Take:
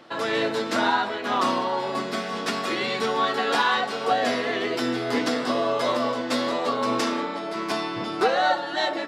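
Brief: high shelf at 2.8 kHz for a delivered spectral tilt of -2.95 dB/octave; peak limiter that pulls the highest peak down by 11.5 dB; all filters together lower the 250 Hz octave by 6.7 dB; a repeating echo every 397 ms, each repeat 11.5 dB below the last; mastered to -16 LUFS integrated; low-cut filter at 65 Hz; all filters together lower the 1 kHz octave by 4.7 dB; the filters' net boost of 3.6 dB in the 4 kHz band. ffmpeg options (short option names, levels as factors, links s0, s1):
-af "highpass=65,equalizer=f=250:t=o:g=-8,equalizer=f=1000:t=o:g=-5.5,highshelf=f=2800:g=-4.5,equalizer=f=4000:t=o:g=8,alimiter=limit=0.0708:level=0:latency=1,aecho=1:1:397|794|1191:0.266|0.0718|0.0194,volume=5.62"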